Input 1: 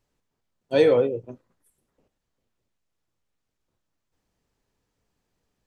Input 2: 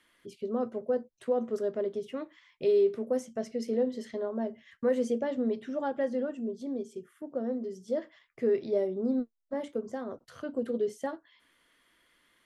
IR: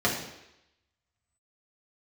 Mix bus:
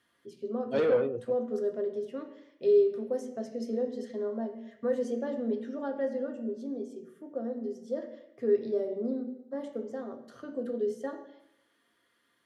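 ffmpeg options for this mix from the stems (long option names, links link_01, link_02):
-filter_complex "[0:a]lowpass=frequency=2600:poles=1,asoftclip=type=tanh:threshold=-17dB,volume=-5dB[link_01];[1:a]volume=-7dB,asplit=2[link_02][link_03];[link_03]volume=-14.5dB[link_04];[2:a]atrim=start_sample=2205[link_05];[link_04][link_05]afir=irnorm=-1:irlink=0[link_06];[link_01][link_02][link_06]amix=inputs=3:normalize=0,highpass=88"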